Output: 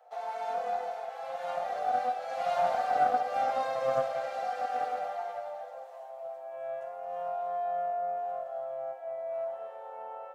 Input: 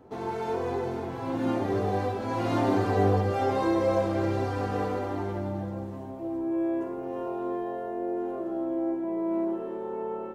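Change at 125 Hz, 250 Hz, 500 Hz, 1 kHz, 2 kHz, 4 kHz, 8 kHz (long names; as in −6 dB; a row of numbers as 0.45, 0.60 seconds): −27.0 dB, −27.5 dB, −4.5 dB, +2.5 dB, −2.5 dB, −3.5 dB, can't be measured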